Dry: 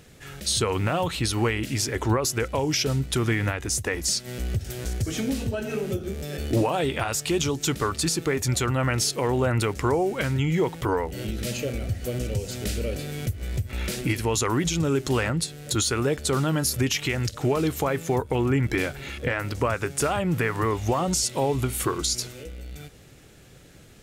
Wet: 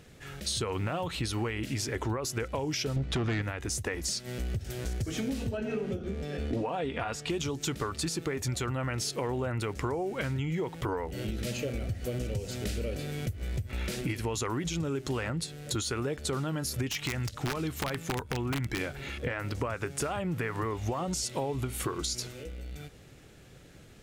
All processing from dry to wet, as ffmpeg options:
ffmpeg -i in.wav -filter_complex "[0:a]asettb=1/sr,asplit=3[link_01][link_02][link_03];[link_01]atrim=end=2.964[link_04];[link_02]atrim=start=2.96:end=3.42,asetpts=PTS-STARTPTS,afade=type=in:duration=0.004:curve=qsin,afade=type=out:start_time=0.456:duration=0.004:curve=qsin,aeval=exprs='0.224*sin(PI/2*2*val(0)/0.224)':channel_layout=same,adynamicsmooth=sensitivity=0.5:basefreq=4500[link_05];[link_03]atrim=start=3.416[link_06];[link_04][link_05]acrossfade=duration=0.004:curve1=hsin:curve2=qsin[link_07];[link_07][link_06]acrossfade=duration=0.004:curve1=qsin:curve2=hsin,asettb=1/sr,asplit=3[link_08][link_09][link_10];[link_08]atrim=end=5.574[link_11];[link_09]atrim=start=5.57:end=7.3,asetpts=PTS-STARTPTS,afade=type=in:duration=0.004:curve=qsin,afade=type=out:start_time=1.726:duration=0.004:curve=qsin,aemphasis=mode=reproduction:type=50fm,aecho=1:1:4.2:0.35,atrim=end_sample=76293[link_12];[link_10]atrim=start=7.296[link_13];[link_11][link_12]acrossfade=duration=0.004:curve1=hsin:curve2=qsin[link_14];[link_14][link_13]acrossfade=duration=0.004:curve1=qsin:curve2=hsin,asettb=1/sr,asplit=3[link_15][link_16][link_17];[link_15]atrim=end=16.884[link_18];[link_16]atrim=start=16.88:end=18.81,asetpts=PTS-STARTPTS,afade=type=in:duration=0.004:curve=qsin,afade=type=out:start_time=1.926:duration=0.004:curve=qsin,aeval=exprs='(mod(5.62*val(0)+1,2)-1)/5.62':channel_layout=same,equalizer=frequency=470:width=1.2:gain=-5.5[link_19];[link_17]atrim=start=18.806[link_20];[link_18][link_19]acrossfade=duration=0.004:curve1=hsin:curve2=qsin[link_21];[link_21][link_20]acrossfade=duration=0.004:curve1=qsin:curve2=hsin,highshelf=frequency=6000:gain=-5.5,acompressor=threshold=-26dB:ratio=6,volume=-2.5dB" out.wav

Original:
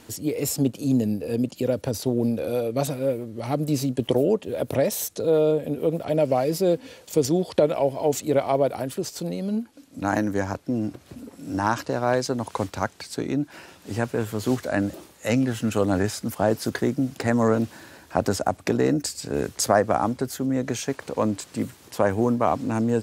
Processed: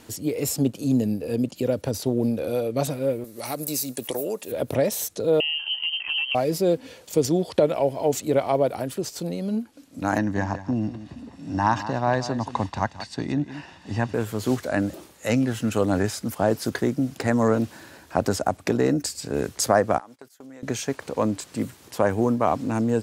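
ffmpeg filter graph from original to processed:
ffmpeg -i in.wav -filter_complex "[0:a]asettb=1/sr,asplit=3[link_01][link_02][link_03];[link_01]atrim=end=3.244[link_04];[link_02]atrim=start=3.24:end=4.52,asetpts=PTS-STARTPTS,afade=type=in:duration=0.004:curve=qsin,afade=type=out:start_time=1.276:duration=0.004:curve=qsin,aemphasis=mode=production:type=riaa,bandreject=frequency=3100:width=7.5,acompressor=threshold=-24dB:ratio=3:attack=3.2:release=140:knee=1:detection=peak[link_05];[link_03]atrim=start=4.516[link_06];[link_04][link_05]acrossfade=duration=0.004:curve1=hsin:curve2=qsin[link_07];[link_07][link_06]acrossfade=duration=0.004:curve1=qsin:curve2=hsin,asettb=1/sr,asplit=3[link_08][link_09][link_10];[link_08]atrim=end=5.404[link_11];[link_09]atrim=start=5.4:end=6.35,asetpts=PTS-STARTPTS,afade=type=in:duration=0.004:curve=qsin,afade=type=out:start_time=0.946:duration=0.004:curve=qsin,lowpass=frequency=2800:width_type=q:width=0.5098,lowpass=frequency=2800:width_type=q:width=0.6013,lowpass=frequency=2800:width_type=q:width=0.9,lowpass=frequency=2800:width_type=q:width=2.563,afreqshift=-3300,acompressor=threshold=-22dB:ratio=6:attack=3.2:release=140:knee=1:detection=peak[link_12];[link_10]atrim=start=6.346[link_13];[link_11][link_12]acrossfade=duration=0.004:curve1=hsin:curve2=qsin[link_14];[link_14][link_13]acrossfade=duration=0.004:curve1=qsin:curve2=hsin,asettb=1/sr,asplit=3[link_15][link_16][link_17];[link_15]atrim=end=10.184[link_18];[link_16]atrim=start=10.18:end=14.14,asetpts=PTS-STARTPTS,afade=type=in:duration=0.004:curve=qsin,afade=type=out:start_time=3.956:duration=0.004:curve=qsin,lowpass=5100,aecho=1:1:1.1:0.52,atrim=end_sample=174636,aecho=1:1:178:0.224,atrim=end_sample=174636[link_19];[link_17]atrim=start=14.136[link_20];[link_18][link_19]acrossfade=duration=0.004:curve1=hsin:curve2=qsin[link_21];[link_21][link_20]acrossfade=duration=0.004:curve1=qsin:curve2=hsin,asettb=1/sr,asplit=3[link_22][link_23][link_24];[link_22]atrim=end=19.984[link_25];[link_23]atrim=start=19.98:end=20.63,asetpts=PTS-STARTPTS,afade=type=in:duration=0.004:curve=qsin,afade=type=out:start_time=0.646:duration=0.004:curve=qsin,agate=range=-22dB:threshold=-31dB:ratio=16:release=100:detection=peak,highpass=frequency=970:poles=1,acompressor=threshold=-39dB:ratio=10:attack=3.2:release=140:knee=1:detection=peak[link_26];[link_24]atrim=start=20.626[link_27];[link_25][link_26]acrossfade=duration=0.004:curve1=hsin:curve2=qsin[link_28];[link_28][link_27]acrossfade=duration=0.004:curve1=qsin:curve2=hsin" out.wav

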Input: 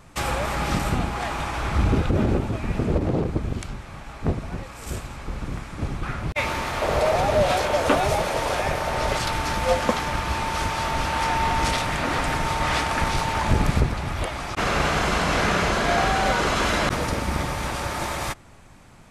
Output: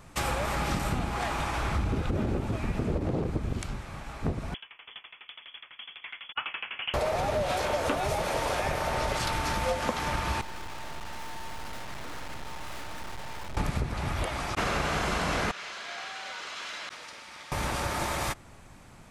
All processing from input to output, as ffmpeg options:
ffmpeg -i in.wav -filter_complex "[0:a]asettb=1/sr,asplit=3[link_01][link_02][link_03];[link_01]atrim=end=4.544[link_04];[link_02]atrim=start=4.54:end=6.94,asetpts=PTS-STARTPTS,afade=type=in:duration=0.004:curve=qsin,afade=type=out:start_time=2.396:duration=0.004:curve=qsin,highpass=frequency=350:poles=1,lowpass=frequency=3000:width_type=q:width=0.5098,lowpass=frequency=3000:width_type=q:width=0.6013,lowpass=frequency=3000:width_type=q:width=0.9,lowpass=frequency=3000:width_type=q:width=2.563,afreqshift=-3500,aeval=exprs='val(0)*pow(10,-21*if(lt(mod(12*n/s,1),2*abs(12)/1000),1-mod(12*n/s,1)/(2*abs(12)/1000),(mod(12*n/s,1)-2*abs(12)/1000)/(1-2*abs(12)/1000))/20)':channel_layout=same[link_05];[link_03]atrim=start=6.936[link_06];[link_04][link_05]acrossfade=duration=0.004:curve1=hsin:curve2=qsin[link_07];[link_07][link_06]acrossfade=duration=0.004:curve1=qsin:curve2=hsin,asettb=1/sr,asplit=3[link_08][link_09][link_10];[link_08]atrim=end=10.414[link_11];[link_09]atrim=start=10.41:end=13.57,asetpts=PTS-STARTPTS,afade=type=in:duration=0.004:curve=qsin,afade=type=out:start_time=3.156:duration=0.004:curve=qsin,lowpass=2400,aeval=exprs='(tanh(50.1*val(0)+0.65)-tanh(0.65))/50.1':channel_layout=same,aeval=exprs='abs(val(0))':channel_layout=same[link_12];[link_10]atrim=start=13.566[link_13];[link_11][link_12]acrossfade=duration=0.004:curve1=hsin:curve2=qsin[link_14];[link_14][link_13]acrossfade=duration=0.004:curve1=qsin:curve2=hsin,asettb=1/sr,asplit=3[link_15][link_16][link_17];[link_15]atrim=end=15.514[link_18];[link_16]atrim=start=15.51:end=17.52,asetpts=PTS-STARTPTS,afade=type=in:duration=0.004:curve=qsin,afade=type=out:start_time=2.006:duration=0.004:curve=qsin,lowpass=3700,aderivative[link_19];[link_17]atrim=start=17.516[link_20];[link_18][link_19]acrossfade=duration=0.004:curve1=hsin:curve2=qsin[link_21];[link_21][link_20]acrossfade=duration=0.004:curve1=qsin:curve2=hsin,highshelf=frequency=11000:gain=3,acompressor=threshold=-23dB:ratio=6,volume=-2dB" out.wav

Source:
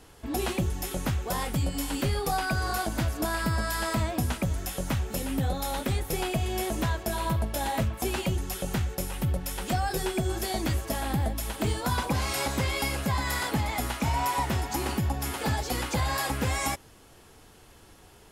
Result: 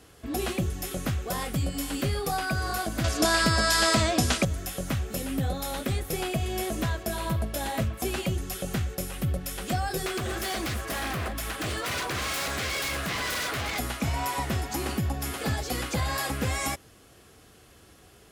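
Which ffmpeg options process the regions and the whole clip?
ffmpeg -i in.wav -filter_complex "[0:a]asettb=1/sr,asplit=3[link_01][link_02][link_03];[link_01]atrim=end=3.044[link_04];[link_02]atrim=start=3.04:end=4.45,asetpts=PTS-STARTPTS,afade=type=in:duration=0.004:curve=qsin,afade=type=out:start_time=1.406:duration=0.004:curve=qsin,lowpass=5200,bass=frequency=250:gain=-6,treble=frequency=4000:gain=13,acontrast=88[link_05];[link_03]atrim=start=4.446[link_06];[link_04][link_05]acrossfade=duration=0.004:curve1=hsin:curve2=qsin[link_07];[link_07][link_06]acrossfade=duration=0.004:curve1=qsin:curve2=hsin,asettb=1/sr,asplit=3[link_08][link_09][link_10];[link_08]atrim=end=10.064[link_11];[link_09]atrim=start=10.06:end=13.79,asetpts=PTS-STARTPTS,afade=type=in:duration=0.004:curve=qsin,afade=type=out:start_time=3.726:duration=0.004:curve=qsin,equalizer=frequency=1500:width_type=o:width=2:gain=8.5,aeval=exprs='0.0562*(abs(mod(val(0)/0.0562+3,4)-2)-1)':channel_layout=same[link_12];[link_10]atrim=start=13.786[link_13];[link_11][link_12]acrossfade=duration=0.004:curve1=hsin:curve2=qsin[link_14];[link_14][link_13]acrossfade=duration=0.004:curve1=qsin:curve2=hsin,highpass=48,bandreject=frequency=900:width=5.1" out.wav

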